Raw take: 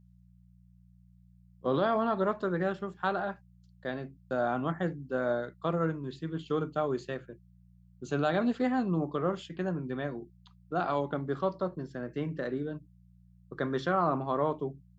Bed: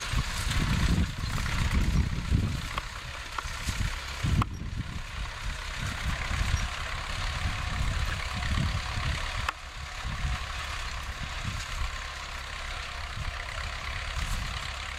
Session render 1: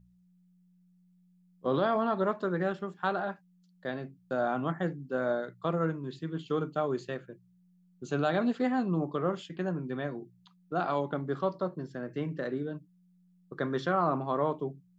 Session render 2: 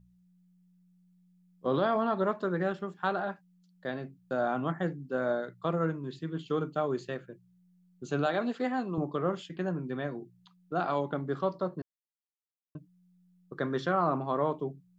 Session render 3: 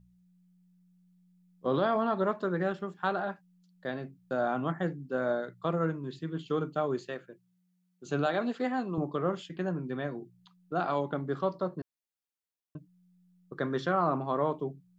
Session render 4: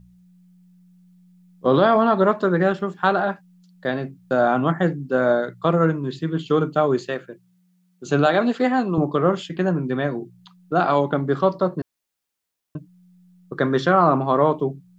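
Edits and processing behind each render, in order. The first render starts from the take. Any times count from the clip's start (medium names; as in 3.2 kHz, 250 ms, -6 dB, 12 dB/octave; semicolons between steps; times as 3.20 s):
de-hum 60 Hz, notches 2
8.26–8.98 s: Bessel high-pass 290 Hz; 11.82–12.75 s: mute
6.99–8.05 s: high-pass 270 Hz -> 600 Hz 6 dB/octave
trim +11.5 dB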